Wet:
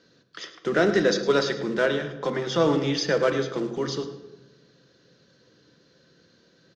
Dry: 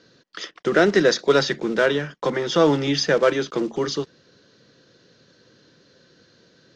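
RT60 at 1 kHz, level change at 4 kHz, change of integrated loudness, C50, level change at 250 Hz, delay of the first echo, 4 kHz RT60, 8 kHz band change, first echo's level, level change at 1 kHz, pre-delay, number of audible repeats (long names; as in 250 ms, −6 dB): 1.0 s, −4.5 dB, −4.0 dB, 9.5 dB, −3.5 dB, 106 ms, 0.75 s, can't be measured, −14.0 dB, −4.0 dB, 3 ms, 1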